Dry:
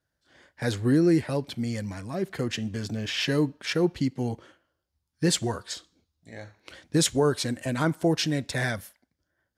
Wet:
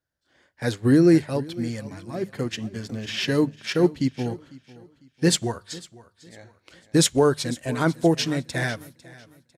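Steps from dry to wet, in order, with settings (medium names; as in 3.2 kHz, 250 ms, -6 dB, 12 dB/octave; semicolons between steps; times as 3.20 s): hum notches 50/100/150/200 Hz; feedback delay 500 ms, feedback 38%, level -14.5 dB; upward expansion 1.5:1, over -39 dBFS; trim +5.5 dB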